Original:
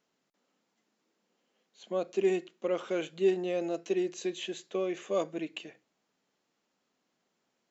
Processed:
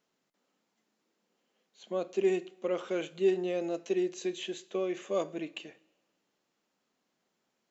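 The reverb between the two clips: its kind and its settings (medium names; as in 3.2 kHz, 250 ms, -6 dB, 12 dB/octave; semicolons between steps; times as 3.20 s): two-slope reverb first 0.58 s, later 1.7 s, from -16 dB, DRR 16 dB; trim -1 dB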